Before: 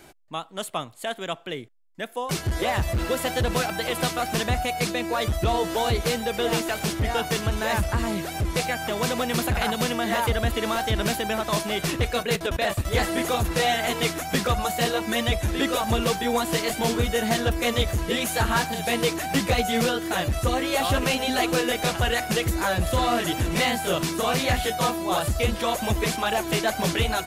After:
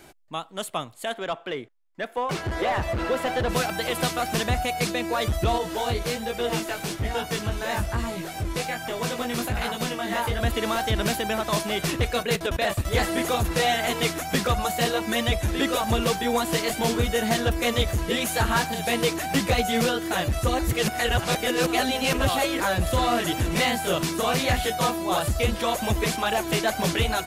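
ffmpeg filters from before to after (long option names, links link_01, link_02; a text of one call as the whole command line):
ffmpeg -i in.wav -filter_complex "[0:a]asettb=1/sr,asplit=3[link_01][link_02][link_03];[link_01]atrim=end=1.134[link_04];[link_02]atrim=start=1.13:end=3.49,asetpts=PTS-STARTPTS,afade=type=in:duration=0.004:curve=qsin,afade=type=out:start_time=2.356:duration=0.004:curve=qsin,asplit=2[link_05][link_06];[link_06]highpass=frequency=720:poles=1,volume=14dB,asoftclip=type=tanh:threshold=-14.5dB[link_07];[link_05][link_07]amix=inputs=2:normalize=0,lowpass=frequency=1200:poles=1,volume=-6dB[link_08];[link_03]atrim=start=3.486[link_09];[link_04][link_08]acrossfade=duration=0.004:curve1=hsin:curve2=qsin[link_10];[link_10][link_09]acrossfade=duration=0.004:curve1=qsin:curve2=hsin,asettb=1/sr,asplit=3[link_11][link_12][link_13];[link_11]atrim=end=5.584[link_14];[link_12]atrim=start=5.58:end=10.41,asetpts=PTS-STARTPTS,afade=type=in:duration=0.004:curve=qsin,afade=type=out:start_time=4.826:duration=0.004:curve=qsin,flanger=delay=16.5:depth=4.7:speed=1.2[link_15];[link_13]atrim=start=10.406[link_16];[link_14][link_15]acrossfade=duration=0.004:curve1=hsin:curve2=qsin[link_17];[link_17][link_16]acrossfade=duration=0.004:curve1=qsin:curve2=hsin,asplit=3[link_18][link_19][link_20];[link_18]atrim=end=20.592[link_21];[link_19]atrim=start=20.588:end=22.602,asetpts=PTS-STARTPTS,areverse[link_22];[link_20]atrim=start=22.598[link_23];[link_21][link_22]acrossfade=duration=0.004:curve1=hsin:curve2=hsin[link_24];[link_24][link_23]acrossfade=duration=0.004:curve1=hsin:curve2=hsin" out.wav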